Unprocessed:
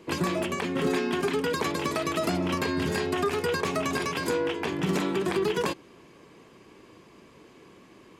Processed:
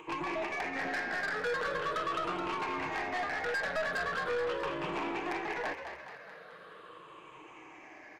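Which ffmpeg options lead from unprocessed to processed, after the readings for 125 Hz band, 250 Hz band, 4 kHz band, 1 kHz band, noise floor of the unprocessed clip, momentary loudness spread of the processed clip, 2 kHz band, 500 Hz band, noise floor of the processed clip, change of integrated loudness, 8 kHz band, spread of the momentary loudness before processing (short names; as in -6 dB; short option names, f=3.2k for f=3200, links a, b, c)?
-16.5 dB, -13.0 dB, -9.0 dB, -2.5 dB, -54 dBFS, 18 LU, -0.5 dB, -8.5 dB, -52 dBFS, -6.5 dB, -15.0 dB, 2 LU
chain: -filter_complex "[0:a]afftfilt=real='re*pow(10,16/40*sin(2*PI*(0.68*log(max(b,1)*sr/1024/100)/log(2)-(-0.41)*(pts-256)/sr)))':imag='im*pow(10,16/40*sin(2*PI*(0.68*log(max(b,1)*sr/1024/100)/log(2)-(-0.41)*(pts-256)/sr)))':win_size=1024:overlap=0.75,equalizer=f=250:t=o:w=0.33:g=-8,equalizer=f=400:t=o:w=0.33:g=-8,equalizer=f=1k:t=o:w=0.33:g=-4,equalizer=f=1.6k:t=o:w=0.33:g=6,equalizer=f=4k:t=o:w=0.33:g=5,equalizer=f=6.3k:t=o:w=0.33:g=4,acrossover=split=2800[a][b];[b]acompressor=threshold=-47dB:ratio=4:attack=1:release=60[c];[a][c]amix=inputs=2:normalize=0,acrossover=split=420 2400:gain=0.141 1 0.126[d][e][f];[d][e][f]amix=inputs=3:normalize=0,aecho=1:1:6.5:0.45,acompressor=mode=upward:threshold=-45dB:ratio=2.5,aeval=exprs='0.188*(cos(1*acos(clip(val(0)/0.188,-1,1)))-cos(1*PI/2))+0.00668*(cos(5*acos(clip(val(0)/0.188,-1,1)))-cos(5*PI/2))+0.0133*(cos(6*acos(clip(val(0)/0.188,-1,1)))-cos(6*PI/2))':c=same,asoftclip=type=tanh:threshold=-28dB,asplit=7[g][h][i][j][k][l][m];[h]adelay=213,afreqshift=65,volume=-8dB[n];[i]adelay=426,afreqshift=130,volume=-13.5dB[o];[j]adelay=639,afreqshift=195,volume=-19dB[p];[k]adelay=852,afreqshift=260,volume=-24.5dB[q];[l]adelay=1065,afreqshift=325,volume=-30.1dB[r];[m]adelay=1278,afreqshift=390,volume=-35.6dB[s];[g][n][o][p][q][r][s]amix=inputs=7:normalize=0,volume=-2dB"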